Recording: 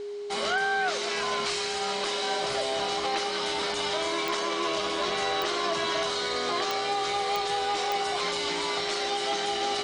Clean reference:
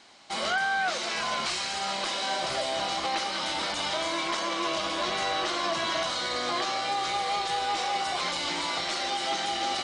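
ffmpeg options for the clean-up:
ffmpeg -i in.wav -af "adeclick=threshold=4,bandreject=frequency=410:width=30" out.wav

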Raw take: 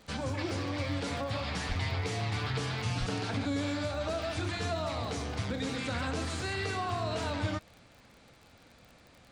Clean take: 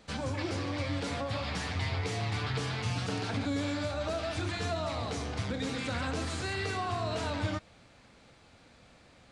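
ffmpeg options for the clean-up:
ffmpeg -i in.wav -filter_complex "[0:a]adeclick=threshold=4,asplit=3[link_01][link_02][link_03];[link_01]afade=type=out:start_time=1.68:duration=0.02[link_04];[link_02]highpass=frequency=140:width=0.5412,highpass=frequency=140:width=1.3066,afade=type=in:start_time=1.68:duration=0.02,afade=type=out:start_time=1.8:duration=0.02[link_05];[link_03]afade=type=in:start_time=1.8:duration=0.02[link_06];[link_04][link_05][link_06]amix=inputs=3:normalize=0,asplit=3[link_07][link_08][link_09];[link_07]afade=type=out:start_time=2.99:duration=0.02[link_10];[link_08]highpass=frequency=140:width=0.5412,highpass=frequency=140:width=1.3066,afade=type=in:start_time=2.99:duration=0.02,afade=type=out:start_time=3.11:duration=0.02[link_11];[link_09]afade=type=in:start_time=3.11:duration=0.02[link_12];[link_10][link_11][link_12]amix=inputs=3:normalize=0" out.wav

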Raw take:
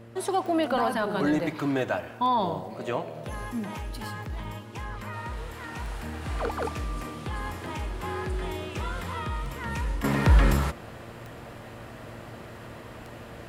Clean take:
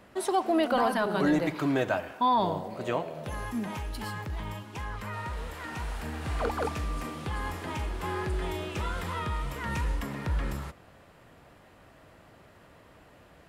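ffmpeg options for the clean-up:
ffmpeg -i in.wav -af "adeclick=threshold=4,bandreject=frequency=115.5:width_type=h:width=4,bandreject=frequency=231:width_type=h:width=4,bandreject=frequency=346.5:width_type=h:width=4,bandreject=frequency=462:width_type=h:width=4,bandreject=frequency=577.5:width_type=h:width=4,asetnsamples=nb_out_samples=441:pad=0,asendcmd='10.04 volume volume -11.5dB',volume=0dB" out.wav

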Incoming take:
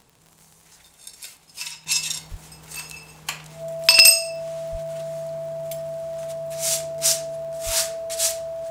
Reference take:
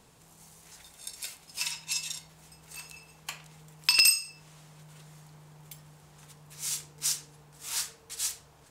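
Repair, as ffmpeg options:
ffmpeg -i in.wav -filter_complex "[0:a]adeclick=threshold=4,bandreject=frequency=660:width=30,asplit=3[link_01][link_02][link_03];[link_01]afade=type=out:start_time=2.3:duration=0.02[link_04];[link_02]highpass=frequency=140:width=0.5412,highpass=frequency=140:width=1.3066,afade=type=in:start_time=2.3:duration=0.02,afade=type=out:start_time=2.42:duration=0.02[link_05];[link_03]afade=type=in:start_time=2.42:duration=0.02[link_06];[link_04][link_05][link_06]amix=inputs=3:normalize=0,asplit=3[link_07][link_08][link_09];[link_07]afade=type=out:start_time=4.71:duration=0.02[link_10];[link_08]highpass=frequency=140:width=0.5412,highpass=frequency=140:width=1.3066,afade=type=in:start_time=4.71:duration=0.02,afade=type=out:start_time=4.83:duration=0.02[link_11];[link_09]afade=type=in:start_time=4.83:duration=0.02[link_12];[link_10][link_11][link_12]amix=inputs=3:normalize=0,asplit=3[link_13][link_14][link_15];[link_13]afade=type=out:start_time=7.65:duration=0.02[link_16];[link_14]highpass=frequency=140:width=0.5412,highpass=frequency=140:width=1.3066,afade=type=in:start_time=7.65:duration=0.02,afade=type=out:start_time=7.77:duration=0.02[link_17];[link_15]afade=type=in:start_time=7.77:duration=0.02[link_18];[link_16][link_17][link_18]amix=inputs=3:normalize=0,asetnsamples=nb_out_samples=441:pad=0,asendcmd='1.86 volume volume -9.5dB',volume=0dB" out.wav

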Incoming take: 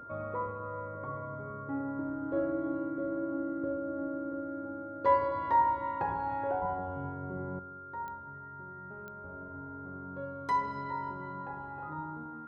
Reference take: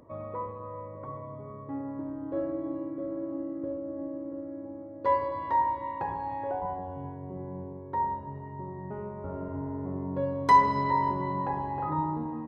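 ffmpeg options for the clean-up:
ffmpeg -i in.wav -af "adeclick=threshold=4,bandreject=frequency=1400:width=30,asetnsamples=nb_out_samples=441:pad=0,asendcmd='7.59 volume volume 11dB',volume=0dB" out.wav

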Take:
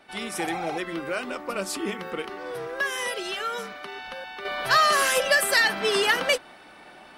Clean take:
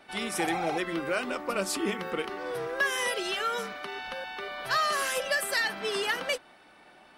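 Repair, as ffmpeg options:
ffmpeg -i in.wav -af "asetnsamples=nb_out_samples=441:pad=0,asendcmd='4.45 volume volume -7.5dB',volume=0dB" out.wav

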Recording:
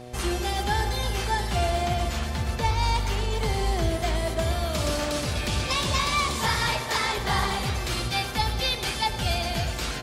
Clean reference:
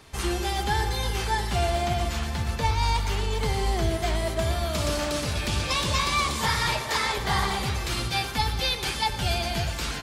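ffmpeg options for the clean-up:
ffmpeg -i in.wav -af "bandreject=frequency=122.9:width_type=h:width=4,bandreject=frequency=245.8:width_type=h:width=4,bandreject=frequency=368.7:width_type=h:width=4,bandreject=frequency=491.6:width_type=h:width=4,bandreject=frequency=614.5:width_type=h:width=4,bandreject=frequency=737.4:width_type=h:width=4" out.wav

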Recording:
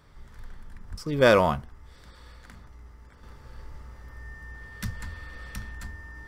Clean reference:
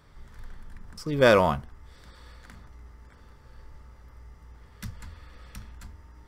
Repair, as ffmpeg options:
ffmpeg -i in.wav -filter_complex "[0:a]bandreject=frequency=1800:width=30,asplit=3[link_01][link_02][link_03];[link_01]afade=type=out:start_time=0.9:duration=0.02[link_04];[link_02]highpass=frequency=140:width=0.5412,highpass=frequency=140:width=1.3066,afade=type=in:start_time=0.9:duration=0.02,afade=type=out:start_time=1.02:duration=0.02[link_05];[link_03]afade=type=in:start_time=1.02:duration=0.02[link_06];[link_04][link_05][link_06]amix=inputs=3:normalize=0,asetnsamples=nb_out_samples=441:pad=0,asendcmd='3.23 volume volume -5dB',volume=0dB" out.wav

